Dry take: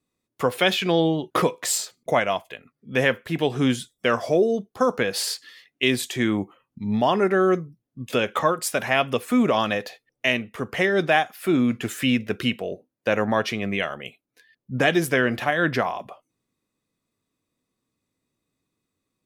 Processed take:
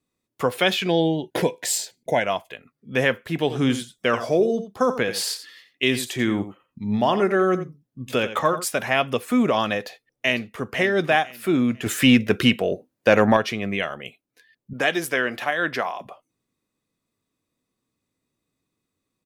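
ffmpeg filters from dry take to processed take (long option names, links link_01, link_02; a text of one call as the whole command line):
ffmpeg -i in.wav -filter_complex "[0:a]asettb=1/sr,asplit=3[link_01][link_02][link_03];[link_01]atrim=end=0.884[link_04];[link_02]atrim=start=0.88:end=2.24,asetpts=PTS-STARTPTS,afade=type=in:duration=0.004:curve=qsin,afade=type=out:start_time=1.356:duration=0.004:curve=qsin,asuperstop=centerf=1200:order=4:qfactor=2.4[link_05];[link_03]atrim=start=2.236[link_06];[link_04][link_05]acrossfade=duration=0.004:curve1=hsin:curve2=qsin[link_07];[link_07][link_06]acrossfade=duration=0.004:curve1=qsin:curve2=hsin,asettb=1/sr,asplit=3[link_08][link_09][link_10];[link_08]atrim=end=3.394[link_11];[link_09]atrim=start=3.39:end=8.65,asetpts=PTS-STARTPTS,afade=type=in:duration=0.004:curve=qsin,afade=type=out:start_time=5.256:duration=0.004:curve=qsin,aecho=1:1:87:0.251,atrim=end_sample=231966[link_12];[link_10]atrim=start=8.646[link_13];[link_11][link_12]acrossfade=duration=0.004:curve1=hsin:curve2=qsin[link_14];[link_14][link_13]acrossfade=duration=0.004:curve1=qsin:curve2=hsin,asplit=2[link_15][link_16];[link_16]afade=type=in:start_time=9.79:duration=0.01,afade=type=out:start_time=10.67:duration=0.01,aecho=0:1:500|1000|1500:0.281838|0.0845515|0.0253654[link_17];[link_15][link_17]amix=inputs=2:normalize=0,asettb=1/sr,asplit=3[link_18][link_19][link_20];[link_18]atrim=end=11.864[link_21];[link_19]atrim=start=11.86:end=13.37,asetpts=PTS-STARTPTS,afade=type=in:duration=0.004:curve=qsin,afade=type=out:start_time=1.506:duration=0.004:curve=qsin,acontrast=76[link_22];[link_20]atrim=start=13.366[link_23];[link_21][link_22]acrossfade=duration=0.004:curve1=hsin:curve2=qsin[link_24];[link_24][link_23]acrossfade=duration=0.004:curve1=qsin:curve2=hsin,asettb=1/sr,asplit=3[link_25][link_26][link_27];[link_25]atrim=end=14.734[link_28];[link_26]atrim=start=14.73:end=16.01,asetpts=PTS-STARTPTS,afade=type=in:duration=0.004:curve=qsin,afade=type=out:start_time=1.276:duration=0.004:curve=qsin,highpass=frequency=510:poles=1[link_29];[link_27]atrim=start=16.006[link_30];[link_28][link_29]acrossfade=duration=0.004:curve1=hsin:curve2=qsin[link_31];[link_31][link_30]acrossfade=duration=0.004:curve1=qsin:curve2=hsin" out.wav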